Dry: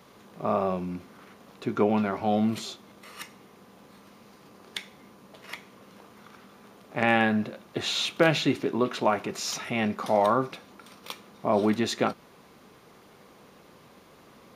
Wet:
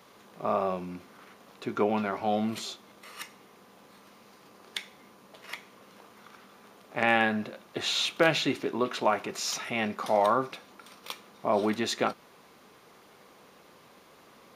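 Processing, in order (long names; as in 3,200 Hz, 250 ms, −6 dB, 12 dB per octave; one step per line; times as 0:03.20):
low-shelf EQ 290 Hz −8.5 dB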